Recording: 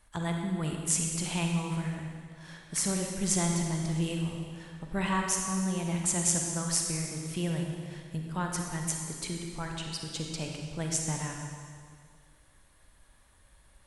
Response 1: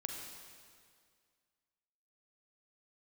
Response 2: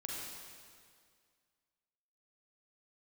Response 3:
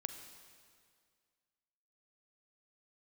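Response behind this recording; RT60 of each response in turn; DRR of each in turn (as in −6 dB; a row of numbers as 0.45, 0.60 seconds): 1; 2.0, 2.0, 2.0 seconds; 1.5, −4.0, 7.0 decibels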